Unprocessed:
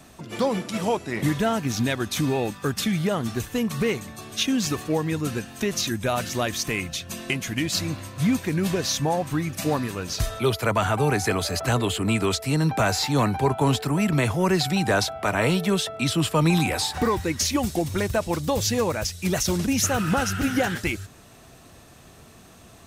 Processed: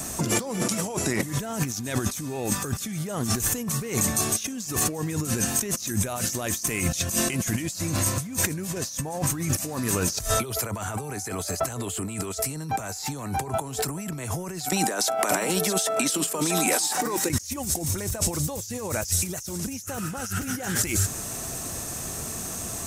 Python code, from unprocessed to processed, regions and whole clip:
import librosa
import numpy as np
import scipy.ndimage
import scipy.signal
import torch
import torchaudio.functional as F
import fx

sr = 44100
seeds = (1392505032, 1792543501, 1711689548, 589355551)

y = fx.chain(x, sr, fx.highpass(hz=220.0, slope=24),
    fx.over_compress(threshold_db=-35.0, ratio=-1.0),
    fx.echo_single(ms=640, db=-13.0), at=(14.65, 17.3))
y = fx.high_shelf_res(y, sr, hz=5000.0, db=10.0, q=1.5)
y = fx.over_compress(y, sr, threshold_db=-33.0, ratio=-1.0)
y = F.gain(torch.from_numpy(y), 4.0).numpy()